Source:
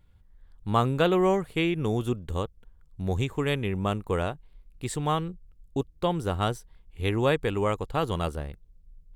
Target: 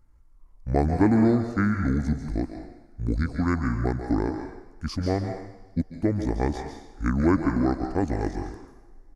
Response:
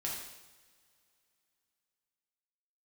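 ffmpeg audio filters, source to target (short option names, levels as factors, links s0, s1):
-filter_complex "[0:a]equalizer=f=500:t=o:w=1:g=4,equalizer=f=1000:t=o:w=1:g=-5,equalizer=f=2000:t=o:w=1:g=4,equalizer=f=4000:t=o:w=1:g=-9,asetrate=26990,aresample=44100,atempo=1.63392,asplit=2[s0][s1];[1:a]atrim=start_sample=2205,lowshelf=f=270:g=-11,adelay=139[s2];[s1][s2]afir=irnorm=-1:irlink=0,volume=0.501[s3];[s0][s3]amix=inputs=2:normalize=0,volume=1.19"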